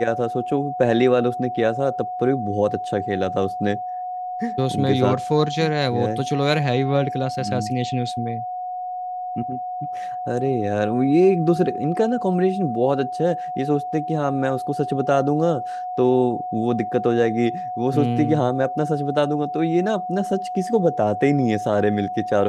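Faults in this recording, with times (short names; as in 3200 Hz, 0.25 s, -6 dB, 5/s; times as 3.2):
tone 730 Hz -26 dBFS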